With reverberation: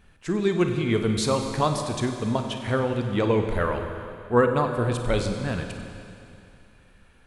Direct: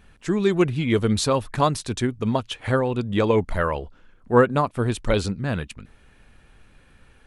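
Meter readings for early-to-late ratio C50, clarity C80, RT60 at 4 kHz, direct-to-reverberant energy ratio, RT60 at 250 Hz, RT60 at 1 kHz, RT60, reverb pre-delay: 5.5 dB, 6.5 dB, 2.6 s, 4.5 dB, 2.6 s, 2.6 s, 2.6 s, 33 ms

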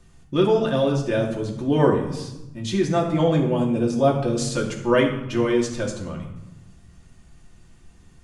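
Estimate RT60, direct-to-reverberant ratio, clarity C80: 0.95 s, -1.5 dB, 9.0 dB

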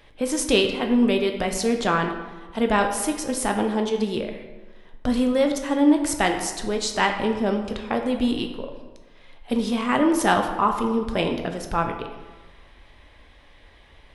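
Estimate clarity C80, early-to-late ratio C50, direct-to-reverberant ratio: 8.5 dB, 7.0 dB, 4.0 dB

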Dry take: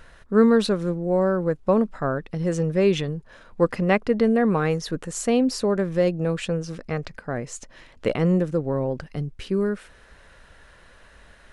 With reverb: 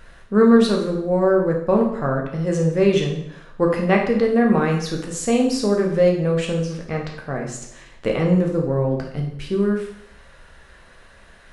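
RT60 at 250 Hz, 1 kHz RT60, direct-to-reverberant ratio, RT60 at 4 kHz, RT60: 0.70 s, 0.70 s, 0.0 dB, 0.65 s, 0.75 s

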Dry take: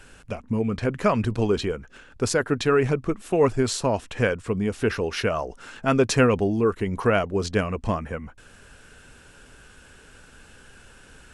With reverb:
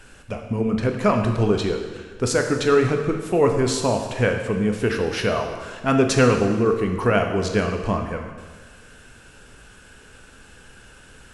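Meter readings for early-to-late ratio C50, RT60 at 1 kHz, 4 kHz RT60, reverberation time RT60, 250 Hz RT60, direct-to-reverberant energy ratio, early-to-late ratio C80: 6.0 dB, 1.5 s, 1.4 s, 1.5 s, 1.5 s, 3.5 dB, 7.5 dB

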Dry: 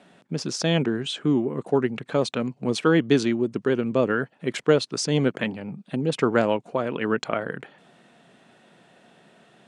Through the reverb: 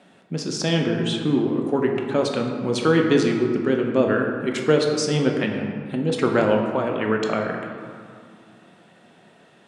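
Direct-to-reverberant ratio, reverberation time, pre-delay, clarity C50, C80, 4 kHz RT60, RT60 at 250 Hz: 1.5 dB, 2.4 s, 4 ms, 3.5 dB, 5.0 dB, 1.1 s, 3.1 s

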